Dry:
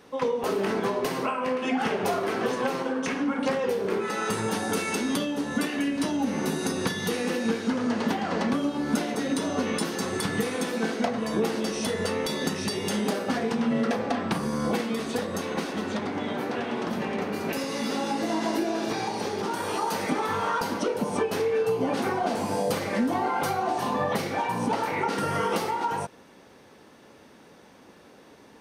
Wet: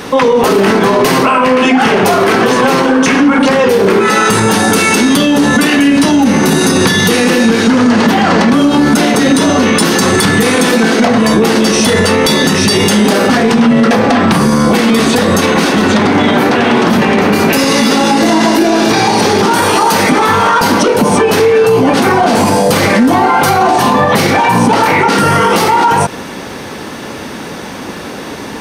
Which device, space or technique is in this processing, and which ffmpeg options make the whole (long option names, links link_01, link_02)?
mastering chain: -af "equalizer=frequency=530:width_type=o:width=1.3:gain=-3.5,acompressor=threshold=-30dB:ratio=2,asoftclip=type=tanh:threshold=-21.5dB,alimiter=level_in=30.5dB:limit=-1dB:release=50:level=0:latency=1,volume=-1dB"